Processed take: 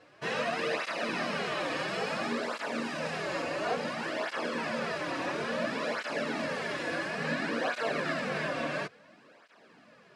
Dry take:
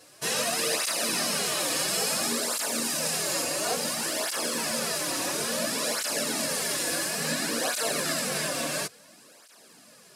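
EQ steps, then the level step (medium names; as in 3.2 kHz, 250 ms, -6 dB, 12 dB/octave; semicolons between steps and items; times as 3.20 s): Chebyshev low-pass 2.1 kHz, order 2; 0.0 dB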